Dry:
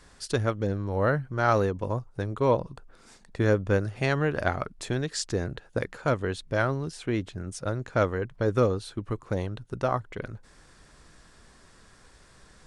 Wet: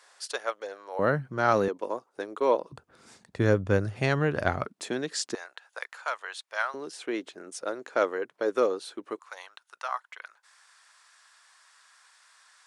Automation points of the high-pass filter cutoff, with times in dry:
high-pass filter 24 dB per octave
560 Hz
from 0:00.99 140 Hz
from 0:01.68 310 Hz
from 0:02.72 78 Hz
from 0:04.66 210 Hz
from 0:05.35 810 Hz
from 0:06.74 320 Hz
from 0:09.19 940 Hz

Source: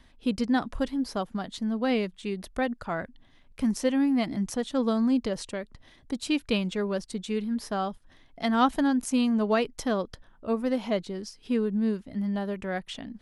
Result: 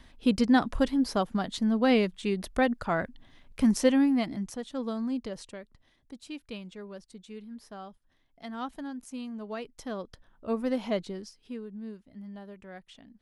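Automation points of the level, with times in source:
0:03.89 +3 dB
0:04.57 −7.5 dB
0:05.39 −7.5 dB
0:06.20 −14 dB
0:09.44 −14 dB
0:10.58 −2 dB
0:11.10 −2 dB
0:11.61 −14 dB

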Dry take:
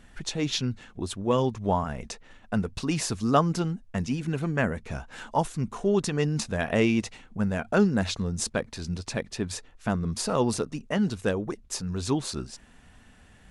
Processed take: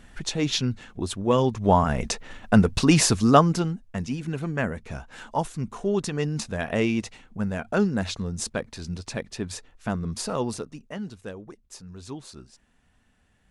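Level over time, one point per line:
0:01.44 +3 dB
0:02.01 +10 dB
0:03.01 +10 dB
0:03.89 −1 dB
0:10.21 −1 dB
0:11.20 −11 dB

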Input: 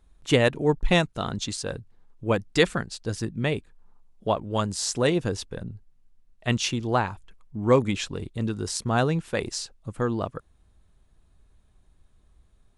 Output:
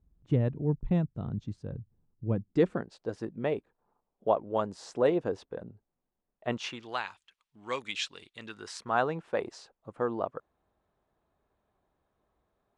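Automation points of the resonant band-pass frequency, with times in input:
resonant band-pass, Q 1
0:02.28 120 Hz
0:02.94 590 Hz
0:06.49 590 Hz
0:06.99 3,300 Hz
0:08.21 3,300 Hz
0:09.22 710 Hz

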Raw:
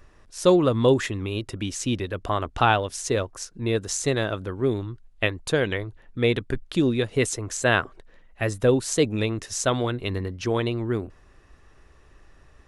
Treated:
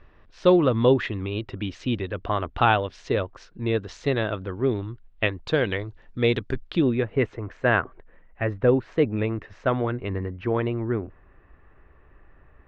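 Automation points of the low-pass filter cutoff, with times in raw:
low-pass filter 24 dB per octave
0:05.36 3,600 Hz
0:05.79 5,900 Hz
0:06.53 5,900 Hz
0:07.04 2,300 Hz

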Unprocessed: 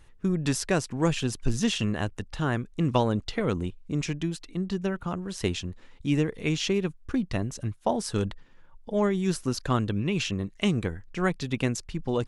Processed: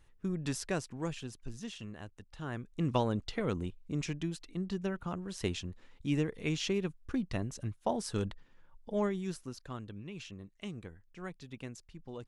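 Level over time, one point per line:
0:00.74 −9 dB
0:01.51 −17.5 dB
0:02.22 −17.5 dB
0:02.83 −6.5 dB
0:09.00 −6.5 dB
0:09.62 −17.5 dB

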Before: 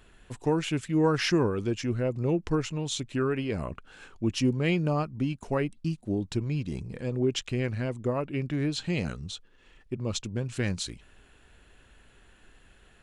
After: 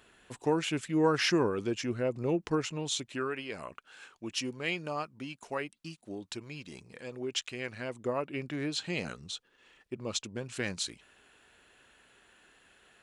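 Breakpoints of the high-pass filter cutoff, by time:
high-pass filter 6 dB per octave
0:02.86 300 Hz
0:03.40 1,100 Hz
0:07.56 1,100 Hz
0:08.11 460 Hz

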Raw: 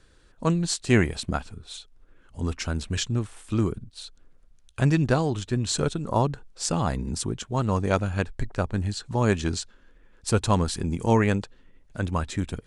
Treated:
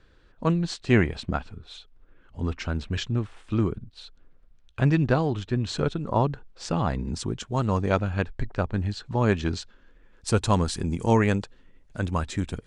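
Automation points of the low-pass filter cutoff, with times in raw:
0:06.86 3,700 Hz
0:07.54 8,400 Hz
0:07.99 4,200 Hz
0:09.51 4,200 Hz
0:10.38 9,400 Hz

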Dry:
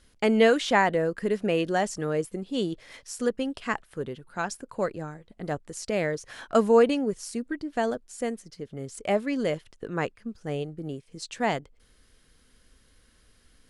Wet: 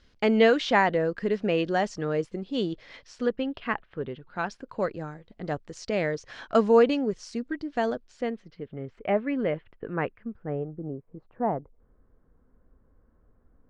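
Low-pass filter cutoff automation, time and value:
low-pass filter 24 dB per octave
0:02.71 5,500 Hz
0:03.85 3,200 Hz
0:04.96 5,700 Hz
0:07.86 5,700 Hz
0:08.90 2,500 Hz
0:10.19 2,500 Hz
0:10.84 1,100 Hz

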